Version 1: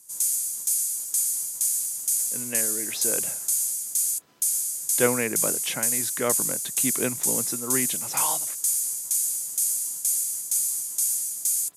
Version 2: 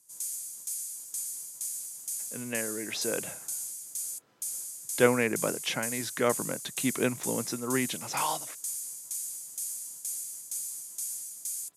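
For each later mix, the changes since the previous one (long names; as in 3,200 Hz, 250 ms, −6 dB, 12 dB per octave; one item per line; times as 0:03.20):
background −8.5 dB
master: add high-shelf EQ 8,600 Hz −5 dB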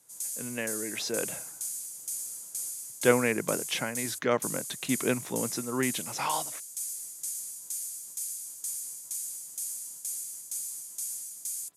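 speech: entry −1.95 s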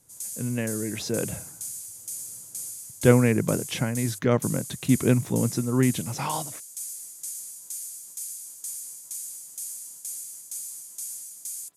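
speech: remove meter weighting curve A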